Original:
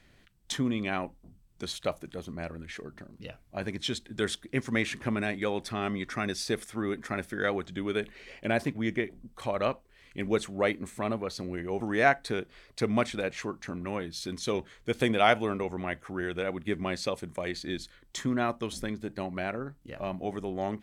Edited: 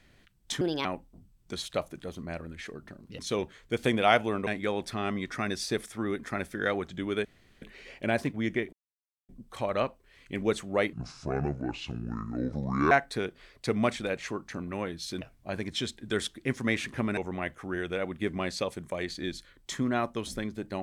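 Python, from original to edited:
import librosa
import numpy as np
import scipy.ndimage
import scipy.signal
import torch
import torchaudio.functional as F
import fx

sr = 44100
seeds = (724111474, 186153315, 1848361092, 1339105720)

y = fx.edit(x, sr, fx.speed_span(start_s=0.61, length_s=0.34, speed=1.43),
    fx.swap(start_s=3.29, length_s=1.96, other_s=14.35, other_length_s=1.28),
    fx.insert_room_tone(at_s=8.03, length_s=0.37),
    fx.insert_silence(at_s=9.14, length_s=0.56),
    fx.speed_span(start_s=10.78, length_s=1.27, speed=0.64), tone=tone)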